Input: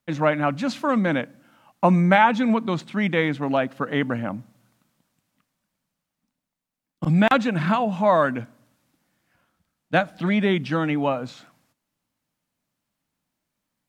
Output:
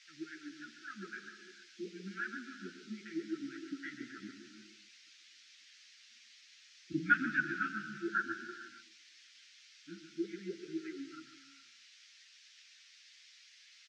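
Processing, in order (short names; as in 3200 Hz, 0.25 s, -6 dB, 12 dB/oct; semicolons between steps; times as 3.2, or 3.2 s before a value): Doppler pass-by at 6.11, 8 m/s, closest 5.3 m; FFT band-reject 360–1300 Hz; wah 3.7 Hz 330–1600 Hz, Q 10; non-linear reverb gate 0.49 s flat, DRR 8.5 dB; band noise 1700–6000 Hz -72 dBFS; on a send: echo 0.138 s -9 dB; on the sum: ensemble effect; gain +14 dB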